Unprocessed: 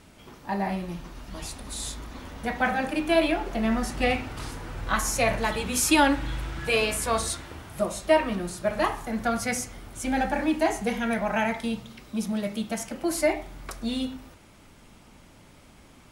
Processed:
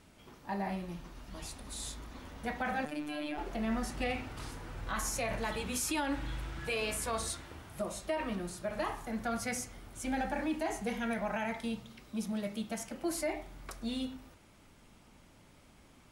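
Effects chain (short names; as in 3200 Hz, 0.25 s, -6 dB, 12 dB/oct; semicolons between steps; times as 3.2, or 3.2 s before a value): 2.85–3.38 robotiser 149 Hz; limiter -17.5 dBFS, peak gain reduction 9 dB; gain -7.5 dB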